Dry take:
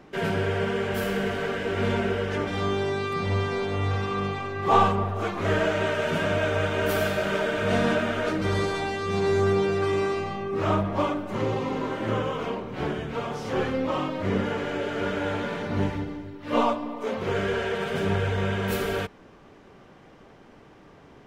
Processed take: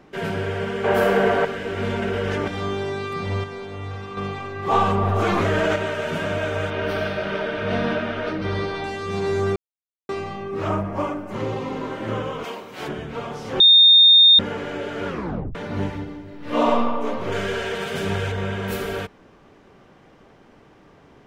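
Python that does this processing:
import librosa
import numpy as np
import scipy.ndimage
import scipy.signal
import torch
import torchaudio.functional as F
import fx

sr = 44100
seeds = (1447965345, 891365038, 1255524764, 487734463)

y = fx.peak_eq(x, sr, hz=750.0, db=13.5, octaves=2.7, at=(0.84, 1.45))
y = fx.env_flatten(y, sr, amount_pct=100, at=(2.02, 2.48))
y = fx.env_flatten(y, sr, amount_pct=100, at=(4.83, 5.76))
y = fx.savgol(y, sr, points=15, at=(6.7, 8.84))
y = fx.peak_eq(y, sr, hz=3700.0, db=-11.5, octaves=0.5, at=(10.68, 11.31))
y = fx.riaa(y, sr, side='recording', at=(12.43, 12.87), fade=0.02)
y = fx.reverb_throw(y, sr, start_s=16.23, length_s=0.5, rt60_s=1.8, drr_db=-3.0)
y = fx.high_shelf(y, sr, hz=2800.0, db=8.5, at=(17.32, 18.32))
y = fx.edit(y, sr, fx.clip_gain(start_s=3.44, length_s=0.73, db=-6.0),
    fx.silence(start_s=9.56, length_s=0.53),
    fx.bleep(start_s=13.6, length_s=0.79, hz=3660.0, db=-8.0),
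    fx.tape_stop(start_s=15.07, length_s=0.48), tone=tone)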